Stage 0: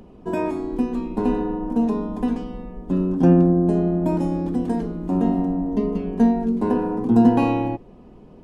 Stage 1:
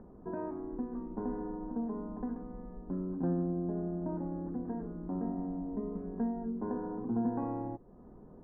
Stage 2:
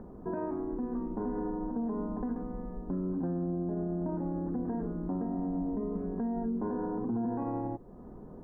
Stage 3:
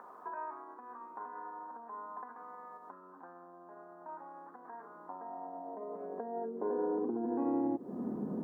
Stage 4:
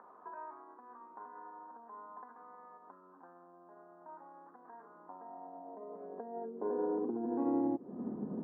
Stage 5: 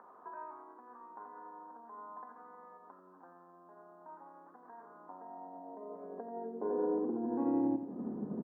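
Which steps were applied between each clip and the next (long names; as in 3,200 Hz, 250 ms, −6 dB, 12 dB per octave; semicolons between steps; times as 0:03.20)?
Butterworth low-pass 1,700 Hz 48 dB per octave; downward compressor 1.5 to 1, threshold −41 dBFS, peak gain reduction 11 dB; level −7 dB
brickwall limiter −32 dBFS, peak gain reduction 9 dB; level +6 dB
downward compressor 6 to 1, threshold −40 dBFS, peak gain reduction 10.5 dB; high-pass filter sweep 1,100 Hz → 210 Hz, 0:04.80–0:08.23; level +6 dB
high-frequency loss of the air 400 metres; expander for the loud parts 1.5 to 1, over −41 dBFS; level +1.5 dB
repeating echo 87 ms, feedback 45%, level −10 dB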